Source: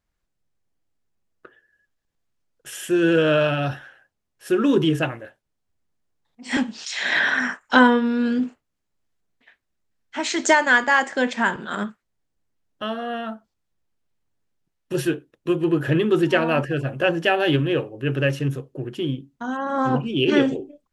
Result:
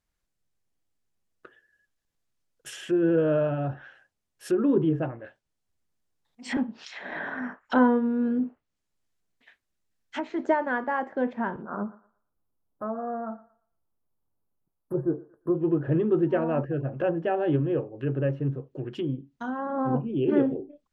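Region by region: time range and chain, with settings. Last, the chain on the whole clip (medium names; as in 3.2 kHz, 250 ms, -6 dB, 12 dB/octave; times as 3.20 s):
11.62–15.55 s: inverse Chebyshev band-stop 2.3–6.8 kHz, stop band 50 dB + peaking EQ 4 kHz +8.5 dB 2.5 oct + thinning echo 116 ms, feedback 29%, high-pass 370 Hz, level -18 dB
whole clip: treble shelf 3.4 kHz +5 dB; low-pass that closes with the level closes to 840 Hz, closed at -22 dBFS; trim -4 dB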